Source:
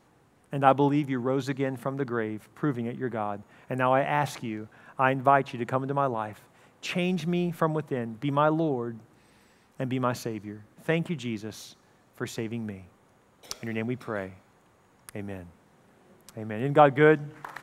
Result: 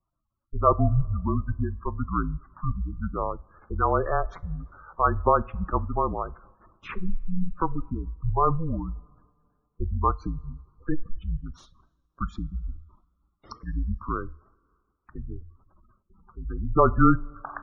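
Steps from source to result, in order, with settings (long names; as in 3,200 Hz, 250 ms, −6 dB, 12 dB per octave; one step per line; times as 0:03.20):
frequency shifter −170 Hz
spectral tilt −2 dB per octave
noise gate with hold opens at −43 dBFS
parametric band 1,200 Hz +14 dB 0.69 octaves
gate on every frequency bin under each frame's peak −15 dB strong
coupled-rooms reverb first 0.32 s, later 2.3 s, from −19 dB, DRR 17.5 dB
amplitude modulation by smooth noise, depth 60%
level −1.5 dB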